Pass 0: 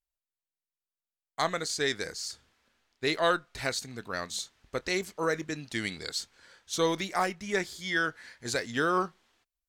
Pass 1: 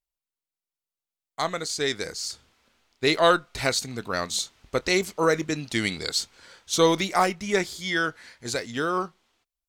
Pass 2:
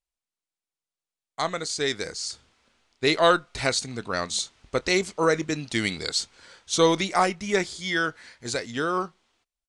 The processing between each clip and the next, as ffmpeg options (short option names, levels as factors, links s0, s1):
-af "equalizer=f=1700:w=5.3:g=-5.5,dynaudnorm=f=330:g=13:m=2.51"
-af "aresample=22050,aresample=44100"